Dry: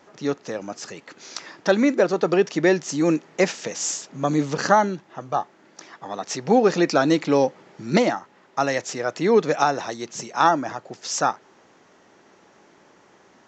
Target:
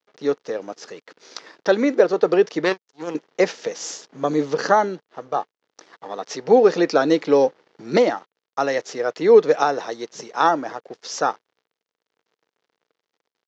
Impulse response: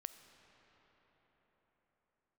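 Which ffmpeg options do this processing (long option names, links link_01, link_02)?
-filter_complex "[0:a]asettb=1/sr,asplit=3[link_01][link_02][link_03];[link_01]atrim=end=2.644[link_04];[link_02]atrim=start=2.64:end=3.15,asetpts=PTS-STARTPTS,afade=type=in:duration=0.004:curve=qsin,afade=type=out:start_time=0.506:duration=0.004:curve=qsin,aeval=exprs='0.447*(cos(1*acos(clip(val(0)/0.447,-1,1)))-cos(1*PI/2))+0.141*(cos(3*acos(clip(val(0)/0.447,-1,1)))-cos(3*PI/2))':channel_layout=same[link_05];[link_03]atrim=start=3.146[link_06];[link_04][link_05]acrossfade=duration=0.004:curve1=hsin:curve2=qsin[link_07];[link_07][link_06]acrossfade=duration=0.004:curve1=qsin:curve2=hsin,aeval=exprs='sgn(val(0))*max(abs(val(0))-0.00422,0)':channel_layout=same,highpass=190,equalizer=frequency=210:width_type=q:width=4:gain=-3,equalizer=frequency=460:width_type=q:width=4:gain=8,equalizer=frequency=2500:width_type=q:width=4:gain=-3,lowpass=frequency=5900:width=0.5412,lowpass=frequency=5900:width=1.3066"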